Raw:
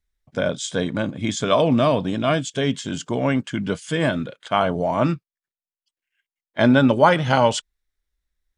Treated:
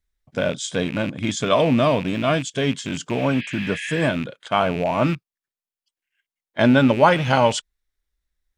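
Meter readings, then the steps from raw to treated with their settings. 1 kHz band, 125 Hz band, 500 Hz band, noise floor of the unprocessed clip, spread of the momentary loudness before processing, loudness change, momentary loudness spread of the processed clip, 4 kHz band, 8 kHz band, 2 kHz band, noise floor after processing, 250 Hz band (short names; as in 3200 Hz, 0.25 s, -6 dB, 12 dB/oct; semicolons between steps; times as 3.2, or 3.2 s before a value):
0.0 dB, 0.0 dB, 0.0 dB, under -85 dBFS, 11 LU, 0.0 dB, 10 LU, +0.5 dB, 0.0 dB, +1.0 dB, under -85 dBFS, 0.0 dB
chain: rattling part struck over -28 dBFS, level -22 dBFS; spectral repair 3.19–4.01, 1600–5100 Hz both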